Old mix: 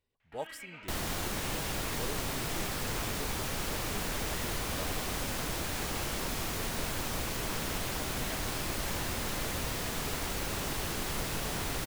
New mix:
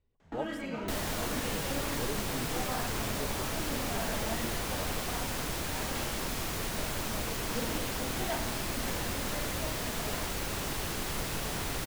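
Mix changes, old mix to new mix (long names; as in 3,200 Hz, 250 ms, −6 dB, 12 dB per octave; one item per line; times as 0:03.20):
speech: add spectral tilt −2.5 dB per octave
first sound: remove resonant band-pass 2,400 Hz, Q 2.2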